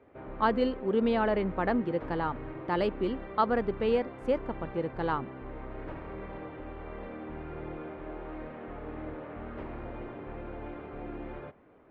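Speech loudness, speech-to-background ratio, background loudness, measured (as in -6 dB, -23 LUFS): -30.5 LUFS, 11.5 dB, -42.0 LUFS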